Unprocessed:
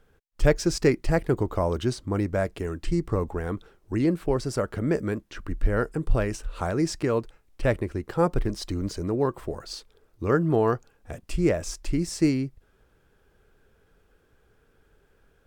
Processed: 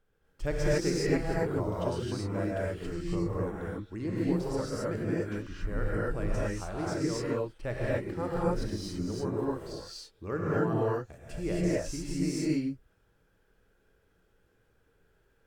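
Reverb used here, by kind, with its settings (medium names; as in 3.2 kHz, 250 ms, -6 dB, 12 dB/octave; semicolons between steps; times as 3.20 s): gated-style reverb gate 300 ms rising, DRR -7 dB; trim -13 dB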